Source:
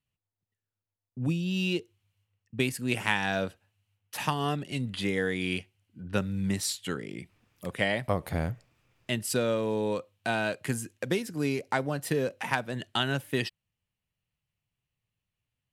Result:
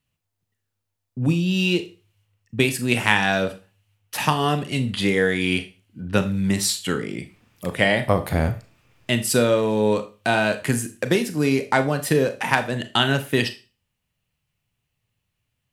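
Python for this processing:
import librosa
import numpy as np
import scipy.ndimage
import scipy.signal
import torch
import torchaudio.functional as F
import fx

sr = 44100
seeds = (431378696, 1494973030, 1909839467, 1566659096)

y = fx.rev_schroeder(x, sr, rt60_s=0.32, comb_ms=26, drr_db=9.0)
y = F.gain(torch.from_numpy(y), 8.5).numpy()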